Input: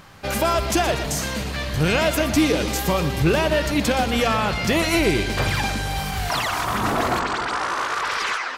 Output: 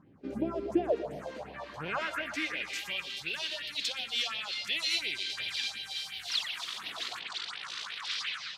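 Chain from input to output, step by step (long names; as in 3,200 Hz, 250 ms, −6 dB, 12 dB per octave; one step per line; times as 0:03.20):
band-pass filter sweep 290 Hz → 3,700 Hz, 0:00.41–0:03.25
all-pass phaser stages 4, 2.8 Hz, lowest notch 110–1,300 Hz
noise in a band 100–240 Hz −72 dBFS
on a send: convolution reverb RT60 0.35 s, pre-delay 102 ms, DRR 21.5 dB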